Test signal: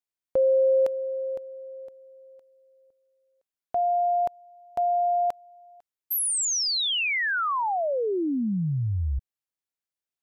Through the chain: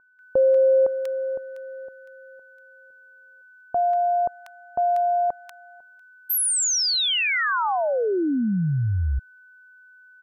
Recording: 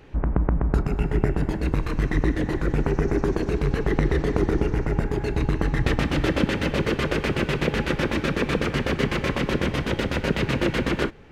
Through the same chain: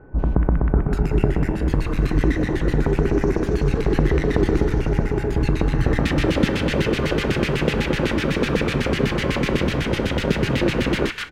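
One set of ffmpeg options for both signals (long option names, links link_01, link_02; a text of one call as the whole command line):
ffmpeg -i in.wav -filter_complex "[0:a]aeval=exprs='val(0)+0.00251*sin(2*PI*1500*n/s)':channel_layout=same,acrossover=split=1300[link_01][link_02];[link_02]adelay=190[link_03];[link_01][link_03]amix=inputs=2:normalize=0,volume=3.5dB" out.wav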